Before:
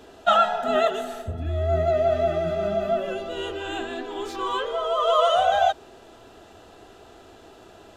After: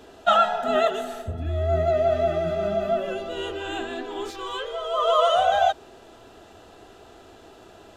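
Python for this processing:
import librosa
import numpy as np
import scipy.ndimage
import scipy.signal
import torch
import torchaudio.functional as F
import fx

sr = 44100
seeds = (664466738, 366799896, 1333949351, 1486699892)

y = fx.graphic_eq(x, sr, hz=(125, 250, 1000), db=(-3, -10, -7), at=(4.3, 4.94))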